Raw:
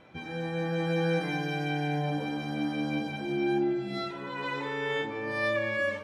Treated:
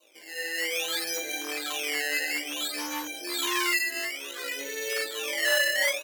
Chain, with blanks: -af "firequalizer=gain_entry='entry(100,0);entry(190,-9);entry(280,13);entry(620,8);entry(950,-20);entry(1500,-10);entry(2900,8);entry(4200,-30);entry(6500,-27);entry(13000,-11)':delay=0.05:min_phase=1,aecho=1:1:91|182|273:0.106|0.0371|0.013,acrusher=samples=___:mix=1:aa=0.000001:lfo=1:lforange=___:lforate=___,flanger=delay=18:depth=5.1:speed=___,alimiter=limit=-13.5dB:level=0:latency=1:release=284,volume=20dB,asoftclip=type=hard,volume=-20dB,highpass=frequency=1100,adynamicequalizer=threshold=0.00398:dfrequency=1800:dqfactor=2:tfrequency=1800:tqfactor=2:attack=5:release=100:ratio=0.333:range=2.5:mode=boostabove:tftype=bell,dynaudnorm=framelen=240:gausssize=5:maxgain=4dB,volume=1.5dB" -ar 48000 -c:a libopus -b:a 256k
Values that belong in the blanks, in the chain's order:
13, 13, 0.58, 0.5